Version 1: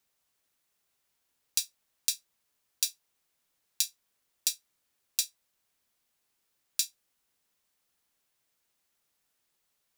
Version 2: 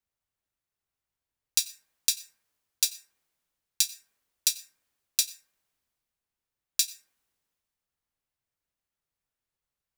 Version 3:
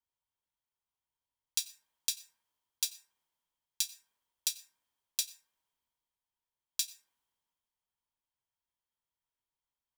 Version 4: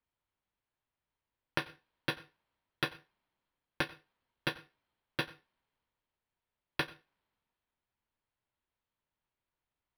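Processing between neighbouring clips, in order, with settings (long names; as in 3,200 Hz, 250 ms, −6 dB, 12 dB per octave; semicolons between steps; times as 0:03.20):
dense smooth reverb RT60 0.89 s, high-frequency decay 0.3×, pre-delay 80 ms, DRR 13.5 dB; multiband upward and downward expander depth 40%; level +2 dB
hollow resonant body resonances 950/3,200 Hz, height 13 dB, ringing for 25 ms; level −8 dB
low-shelf EQ 330 Hz +8 dB; linearly interpolated sample-rate reduction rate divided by 6×; level +1 dB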